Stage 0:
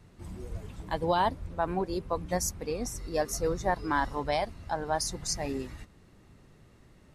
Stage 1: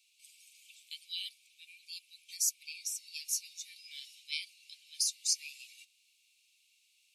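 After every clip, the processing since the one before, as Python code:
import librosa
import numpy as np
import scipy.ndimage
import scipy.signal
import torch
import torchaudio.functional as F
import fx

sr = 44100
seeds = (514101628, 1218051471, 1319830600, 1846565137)

y = scipy.signal.sosfilt(scipy.signal.cheby1(8, 1.0, 2300.0, 'highpass', fs=sr, output='sos'), x)
y = F.gain(torch.from_numpy(y), 3.0).numpy()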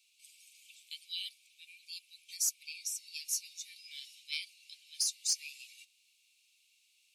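y = 10.0 ** (-19.5 / 20.0) * np.tanh(x / 10.0 ** (-19.5 / 20.0))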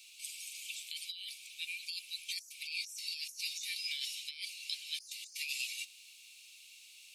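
y = fx.over_compress(x, sr, threshold_db=-50.0, ratio=-1.0)
y = F.gain(torch.from_numpy(y), 6.5).numpy()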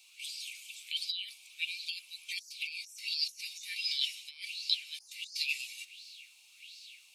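y = fx.bell_lfo(x, sr, hz=1.4, low_hz=830.0, high_hz=4800.0, db=17)
y = F.gain(torch.from_numpy(y), -4.5).numpy()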